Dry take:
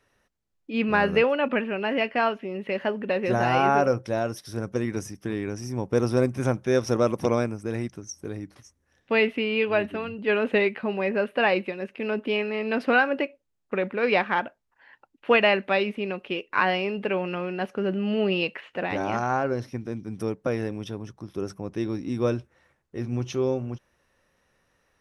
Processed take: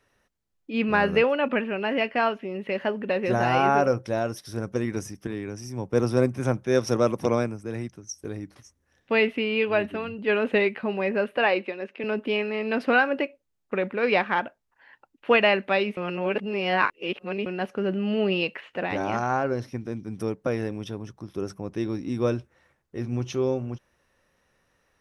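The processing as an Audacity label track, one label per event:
5.270000	8.240000	three-band expander depth 40%
11.370000	12.040000	three-band isolator lows -22 dB, under 210 Hz, highs -14 dB, over 6300 Hz
15.970000	17.460000	reverse

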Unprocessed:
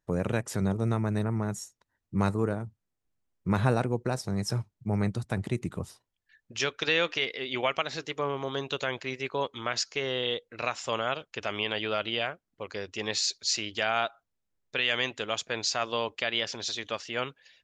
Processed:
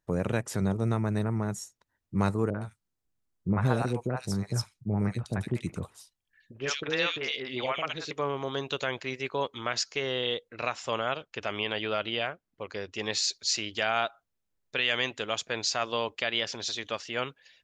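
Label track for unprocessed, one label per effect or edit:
2.500000	8.110000	three bands offset in time lows, mids, highs 40/110 ms, splits 610/2300 Hz
10.490000	12.970000	high shelf 6000 Hz -6 dB

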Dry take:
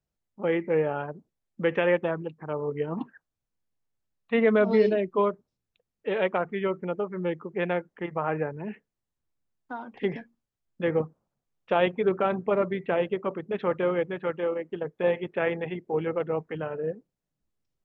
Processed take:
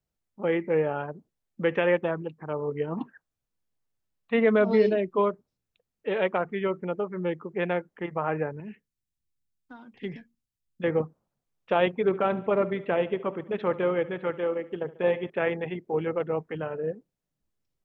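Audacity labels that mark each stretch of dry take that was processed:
8.600000	10.840000	bell 760 Hz -14.5 dB 2.5 oct
11.970000	15.300000	feedback echo 71 ms, feedback 55%, level -18 dB

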